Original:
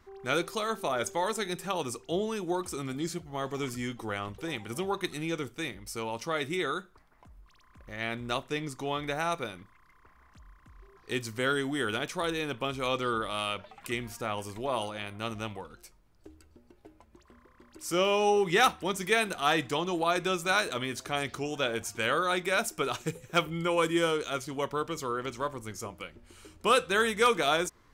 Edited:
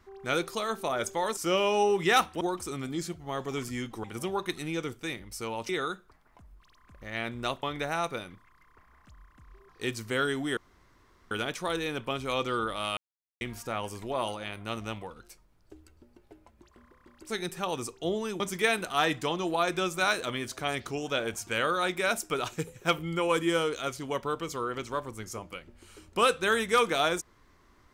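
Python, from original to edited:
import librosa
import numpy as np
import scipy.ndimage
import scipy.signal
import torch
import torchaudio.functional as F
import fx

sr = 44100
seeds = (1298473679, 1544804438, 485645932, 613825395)

y = fx.edit(x, sr, fx.swap(start_s=1.37, length_s=1.1, other_s=17.84, other_length_s=1.04),
    fx.cut(start_s=4.1, length_s=0.49),
    fx.cut(start_s=6.24, length_s=0.31),
    fx.cut(start_s=8.49, length_s=0.42),
    fx.insert_room_tone(at_s=11.85, length_s=0.74),
    fx.silence(start_s=13.51, length_s=0.44), tone=tone)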